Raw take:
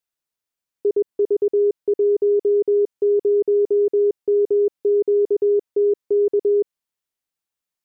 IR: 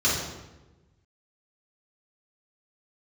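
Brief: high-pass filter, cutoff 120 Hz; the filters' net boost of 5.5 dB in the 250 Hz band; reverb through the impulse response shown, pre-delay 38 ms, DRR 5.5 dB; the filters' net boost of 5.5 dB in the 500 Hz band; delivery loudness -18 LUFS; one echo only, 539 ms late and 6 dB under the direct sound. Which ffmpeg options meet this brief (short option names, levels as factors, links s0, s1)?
-filter_complex "[0:a]highpass=120,equalizer=f=250:t=o:g=5.5,equalizer=f=500:t=o:g=5,aecho=1:1:539:0.501,asplit=2[s0][s1];[1:a]atrim=start_sample=2205,adelay=38[s2];[s1][s2]afir=irnorm=-1:irlink=0,volume=0.1[s3];[s0][s3]amix=inputs=2:normalize=0,volume=0.708"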